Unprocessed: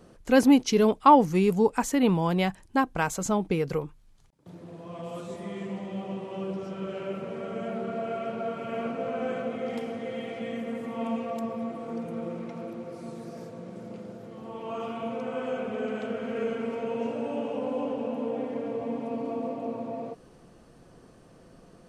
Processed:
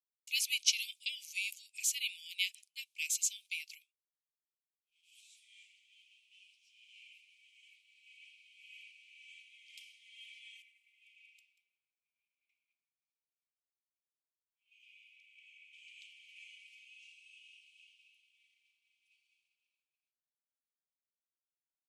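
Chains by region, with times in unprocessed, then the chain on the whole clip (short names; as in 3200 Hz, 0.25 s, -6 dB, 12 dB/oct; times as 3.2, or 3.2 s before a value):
10.62–15.73 ladder high-pass 1900 Hz, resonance 60% + echo 0.187 s -5 dB
whole clip: steep high-pass 2300 Hz 96 dB/oct; expander -56 dBFS; three-band expander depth 70%; gain -3 dB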